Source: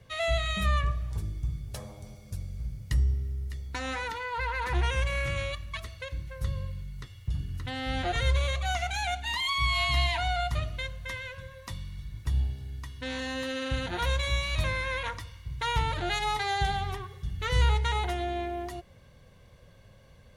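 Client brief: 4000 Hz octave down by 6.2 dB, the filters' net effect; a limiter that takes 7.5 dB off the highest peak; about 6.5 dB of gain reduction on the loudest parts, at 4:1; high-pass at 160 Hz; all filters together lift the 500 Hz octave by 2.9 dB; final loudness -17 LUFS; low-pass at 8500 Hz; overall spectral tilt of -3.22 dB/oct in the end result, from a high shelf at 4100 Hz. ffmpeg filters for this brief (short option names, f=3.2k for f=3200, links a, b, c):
-af "highpass=160,lowpass=8.5k,equalizer=f=500:t=o:g=4,equalizer=f=4k:t=o:g=-3.5,highshelf=f=4.1k:g=-8.5,acompressor=threshold=-33dB:ratio=4,volume=23dB,alimiter=limit=-7.5dB:level=0:latency=1"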